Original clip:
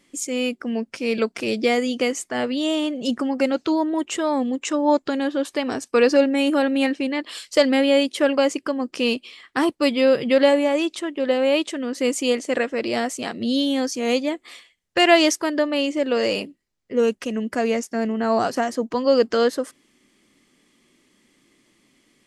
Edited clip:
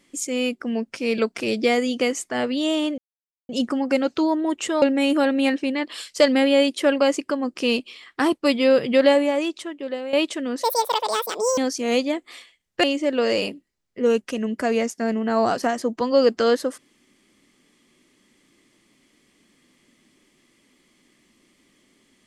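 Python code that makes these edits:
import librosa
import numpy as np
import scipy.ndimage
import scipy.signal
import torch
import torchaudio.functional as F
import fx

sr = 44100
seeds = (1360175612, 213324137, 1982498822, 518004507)

y = fx.edit(x, sr, fx.insert_silence(at_s=2.98, length_s=0.51),
    fx.cut(start_s=4.31, length_s=1.88),
    fx.fade_out_to(start_s=10.46, length_s=1.04, floor_db=-12.5),
    fx.speed_span(start_s=12.0, length_s=1.75, speed=1.85),
    fx.cut(start_s=15.01, length_s=0.76), tone=tone)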